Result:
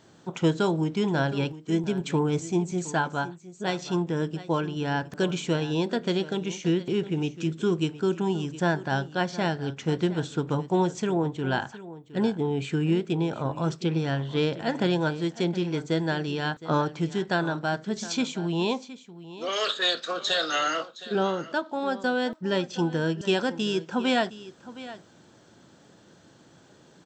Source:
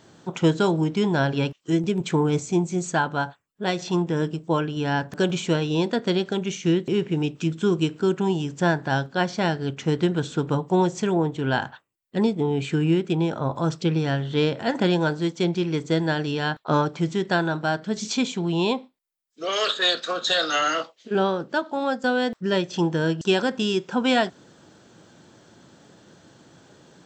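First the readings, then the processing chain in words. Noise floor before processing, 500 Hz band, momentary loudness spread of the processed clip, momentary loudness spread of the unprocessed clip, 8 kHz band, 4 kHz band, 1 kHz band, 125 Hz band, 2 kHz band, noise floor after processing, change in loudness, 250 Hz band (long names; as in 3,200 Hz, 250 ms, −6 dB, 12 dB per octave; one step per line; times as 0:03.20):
−59 dBFS, −3.5 dB, 5 LU, 5 LU, −3.5 dB, −3.5 dB, −3.5 dB, −3.5 dB, −3.5 dB, −56 dBFS, −3.5 dB, −3.5 dB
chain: single-tap delay 715 ms −16 dB
level −3.5 dB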